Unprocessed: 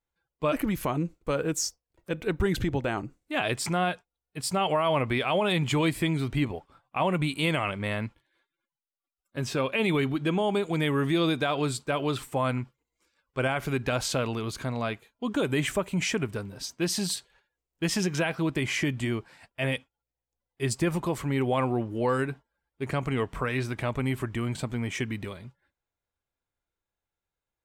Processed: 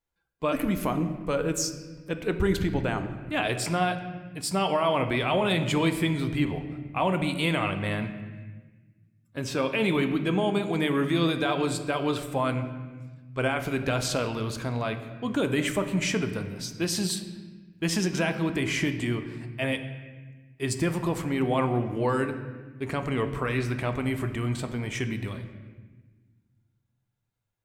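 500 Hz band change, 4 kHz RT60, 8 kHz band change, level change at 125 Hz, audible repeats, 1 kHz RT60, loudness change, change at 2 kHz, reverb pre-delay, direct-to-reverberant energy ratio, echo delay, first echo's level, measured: +0.5 dB, 1.0 s, +0.5 dB, +0.5 dB, no echo audible, 1.2 s, +1.0 dB, +0.5 dB, 3 ms, 7.5 dB, no echo audible, no echo audible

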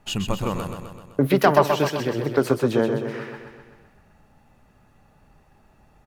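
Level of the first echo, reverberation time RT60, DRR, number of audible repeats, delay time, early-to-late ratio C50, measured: −6.5 dB, no reverb audible, no reverb audible, 7, 128 ms, no reverb audible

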